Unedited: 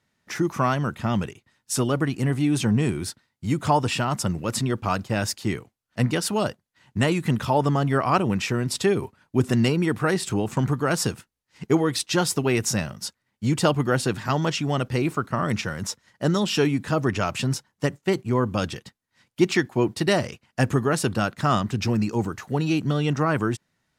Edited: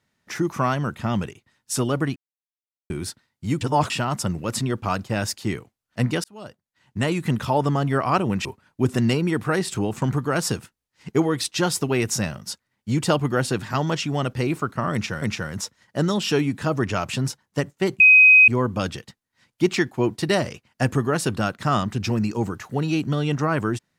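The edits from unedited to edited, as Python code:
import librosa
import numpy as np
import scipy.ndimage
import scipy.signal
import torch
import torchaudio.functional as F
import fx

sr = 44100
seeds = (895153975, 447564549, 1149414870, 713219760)

y = fx.edit(x, sr, fx.silence(start_s=2.16, length_s=0.74),
    fx.reverse_span(start_s=3.61, length_s=0.29),
    fx.fade_in_span(start_s=6.24, length_s=0.98),
    fx.cut(start_s=8.45, length_s=0.55),
    fx.repeat(start_s=15.48, length_s=0.29, count=2),
    fx.insert_tone(at_s=18.26, length_s=0.48, hz=2520.0, db=-8.0), tone=tone)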